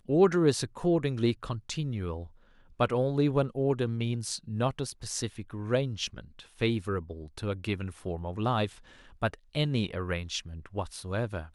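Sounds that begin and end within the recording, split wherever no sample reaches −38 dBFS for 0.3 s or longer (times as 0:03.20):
0:02.80–0:08.68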